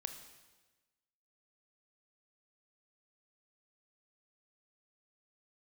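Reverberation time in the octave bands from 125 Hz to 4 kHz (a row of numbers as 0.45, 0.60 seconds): 1.3, 1.3, 1.3, 1.2, 1.2, 1.2 seconds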